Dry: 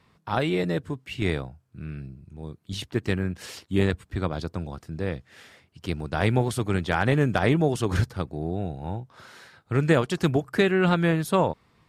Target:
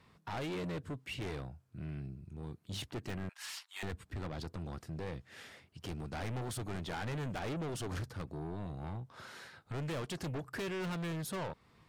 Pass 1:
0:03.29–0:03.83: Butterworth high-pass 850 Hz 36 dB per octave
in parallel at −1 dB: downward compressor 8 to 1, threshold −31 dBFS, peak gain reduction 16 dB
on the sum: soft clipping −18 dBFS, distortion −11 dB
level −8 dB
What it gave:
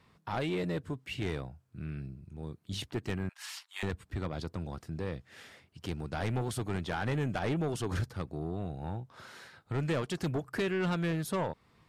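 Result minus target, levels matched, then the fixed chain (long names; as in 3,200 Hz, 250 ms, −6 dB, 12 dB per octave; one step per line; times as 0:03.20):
soft clipping: distortion −7 dB
0:03.29–0:03.83: Butterworth high-pass 850 Hz 36 dB per octave
in parallel at −1 dB: downward compressor 8 to 1, threshold −31 dBFS, peak gain reduction 16 dB
on the sum: soft clipping −28 dBFS, distortion −4 dB
level −8 dB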